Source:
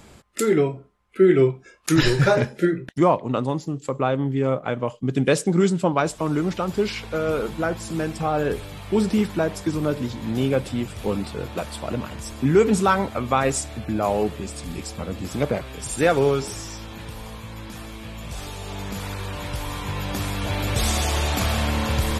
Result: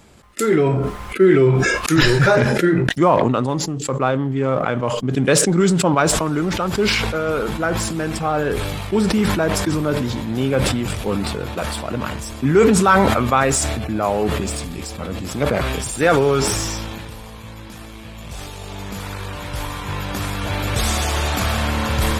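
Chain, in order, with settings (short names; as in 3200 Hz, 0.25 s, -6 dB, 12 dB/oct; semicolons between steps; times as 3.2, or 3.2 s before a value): in parallel at -6 dB: crossover distortion -35 dBFS; on the sum: dynamic EQ 1400 Hz, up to +4 dB, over -38 dBFS, Q 1.6; sustainer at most 24 dB/s; gain -1.5 dB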